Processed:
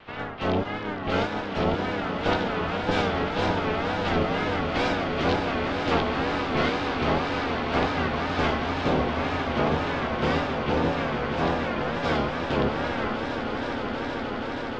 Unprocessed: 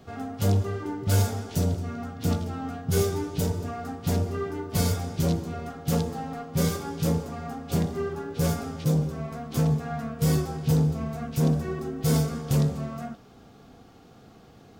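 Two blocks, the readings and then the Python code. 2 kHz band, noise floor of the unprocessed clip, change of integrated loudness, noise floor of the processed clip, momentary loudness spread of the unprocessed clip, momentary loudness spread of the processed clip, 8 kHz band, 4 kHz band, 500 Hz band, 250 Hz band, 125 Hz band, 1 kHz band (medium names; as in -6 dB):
+14.0 dB, -52 dBFS, +1.5 dB, -32 dBFS, 9 LU, 5 LU, -13.5 dB, +7.0 dB, +5.5 dB, +1.0 dB, -6.5 dB, +10.5 dB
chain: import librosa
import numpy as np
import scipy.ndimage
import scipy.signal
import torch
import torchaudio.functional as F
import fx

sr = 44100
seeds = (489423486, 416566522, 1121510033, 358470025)

y = fx.spec_clip(x, sr, under_db=25)
y = scipy.signal.sosfilt(scipy.signal.butter(4, 3200.0, 'lowpass', fs=sr, output='sos'), y)
y = fx.rider(y, sr, range_db=5, speed_s=0.5)
y = fx.echo_swell(y, sr, ms=158, loudest=8, wet_db=-11)
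y = fx.wow_flutter(y, sr, seeds[0], rate_hz=2.1, depth_cents=130.0)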